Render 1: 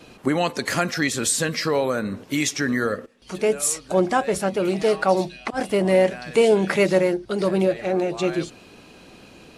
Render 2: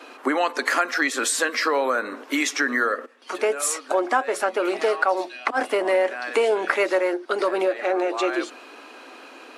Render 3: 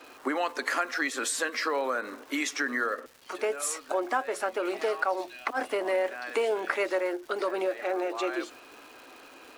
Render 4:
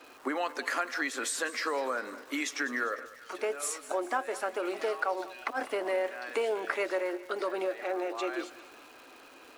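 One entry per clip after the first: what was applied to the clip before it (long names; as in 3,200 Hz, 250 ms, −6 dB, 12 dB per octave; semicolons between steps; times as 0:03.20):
elliptic high-pass filter 260 Hz, stop band 40 dB; parametric band 1,300 Hz +11.5 dB 1.8 octaves; downward compressor 2.5 to 1, threshold −20 dBFS, peak gain reduction 9 dB
surface crackle 460 per second −36 dBFS; level −7 dB
feedback echo with a high-pass in the loop 200 ms, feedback 55%, high-pass 460 Hz, level −16 dB; level −3 dB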